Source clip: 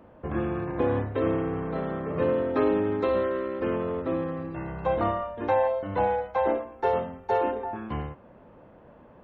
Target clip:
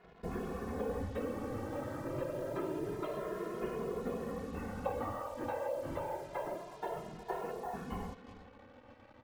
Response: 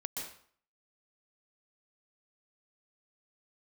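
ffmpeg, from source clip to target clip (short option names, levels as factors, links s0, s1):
-filter_complex "[0:a]acompressor=threshold=0.0355:ratio=6,afftfilt=real='hypot(re,im)*cos(2*PI*random(0))':imag='hypot(re,im)*sin(2*PI*random(1))':win_size=512:overlap=0.75,asplit=2[s0][s1];[s1]adelay=361.5,volume=0.2,highshelf=f=4000:g=-8.13[s2];[s0][s2]amix=inputs=2:normalize=0,acrusher=bits=8:mix=0:aa=0.5,asplit=2[s3][s4];[s4]adelay=2.4,afreqshift=0.27[s5];[s3][s5]amix=inputs=2:normalize=1,volume=1.41"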